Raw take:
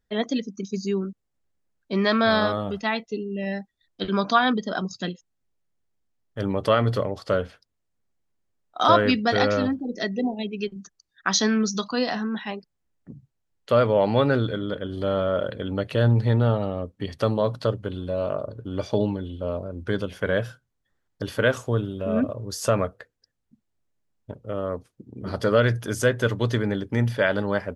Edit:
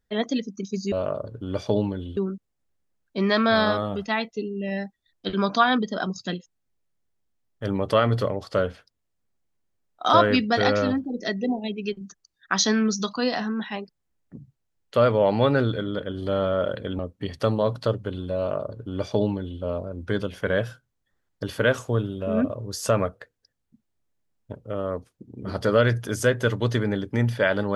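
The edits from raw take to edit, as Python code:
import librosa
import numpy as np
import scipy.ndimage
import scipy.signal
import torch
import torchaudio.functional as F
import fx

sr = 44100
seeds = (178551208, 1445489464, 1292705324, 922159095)

y = fx.edit(x, sr, fx.cut(start_s=15.74, length_s=1.04),
    fx.duplicate(start_s=18.16, length_s=1.25, to_s=0.92), tone=tone)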